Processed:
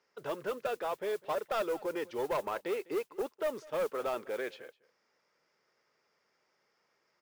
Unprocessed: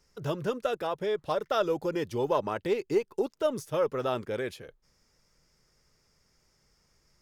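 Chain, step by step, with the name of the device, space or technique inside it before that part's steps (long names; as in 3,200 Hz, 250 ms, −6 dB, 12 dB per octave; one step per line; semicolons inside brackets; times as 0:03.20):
carbon microphone (band-pass filter 430–3,000 Hz; soft clipping −27 dBFS, distortion −12 dB; noise that follows the level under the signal 22 dB)
single-tap delay 202 ms −22 dB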